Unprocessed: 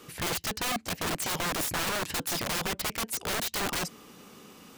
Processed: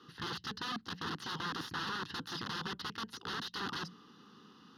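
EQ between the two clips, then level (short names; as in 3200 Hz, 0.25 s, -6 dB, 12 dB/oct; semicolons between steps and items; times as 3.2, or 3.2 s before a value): BPF 120–4900 Hz; notches 60/120/180 Hz; fixed phaser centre 2300 Hz, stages 6; -4.0 dB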